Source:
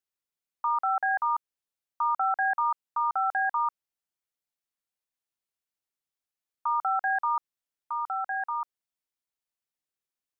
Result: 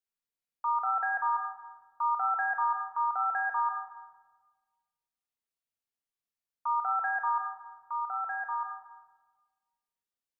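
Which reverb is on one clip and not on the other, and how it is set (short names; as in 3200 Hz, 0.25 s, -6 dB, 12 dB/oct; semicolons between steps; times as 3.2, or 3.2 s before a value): shoebox room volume 1300 m³, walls mixed, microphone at 1.7 m; gain -6.5 dB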